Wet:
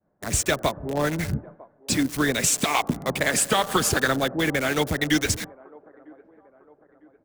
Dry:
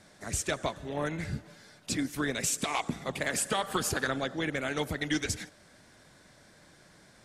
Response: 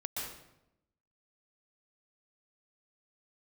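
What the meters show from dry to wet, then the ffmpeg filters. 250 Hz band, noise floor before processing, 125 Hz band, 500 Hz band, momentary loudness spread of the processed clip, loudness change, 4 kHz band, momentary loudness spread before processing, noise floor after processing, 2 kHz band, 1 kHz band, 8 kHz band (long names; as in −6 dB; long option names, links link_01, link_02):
+8.5 dB, −59 dBFS, +8.5 dB, +8.5 dB, 7 LU, +8.5 dB, +8.5 dB, 7 LU, −61 dBFS, +8.5 dB, +8.5 dB, +8.5 dB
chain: -filter_complex "[0:a]agate=range=-33dB:threshold=-45dB:ratio=3:detection=peak,acrossover=split=270|1200[link_01][link_02][link_03];[link_02]aecho=1:1:952|1904|2856:0.1|0.044|0.0194[link_04];[link_03]acrusher=bits=6:mix=0:aa=0.000001[link_05];[link_01][link_04][link_05]amix=inputs=3:normalize=0,volume=8.5dB"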